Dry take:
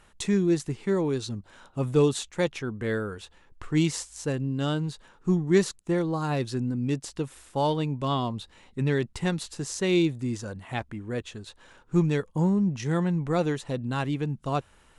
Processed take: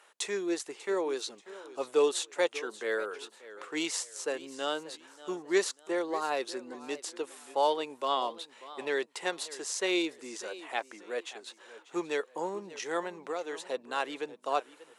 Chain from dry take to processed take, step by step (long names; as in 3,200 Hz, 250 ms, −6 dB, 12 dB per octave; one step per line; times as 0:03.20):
high-pass filter 420 Hz 24 dB per octave
0:13.01–0:13.71: downward compressor, threshold −32 dBFS, peak gain reduction 10 dB
feedback echo with a swinging delay time 588 ms, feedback 33%, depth 125 cents, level −17 dB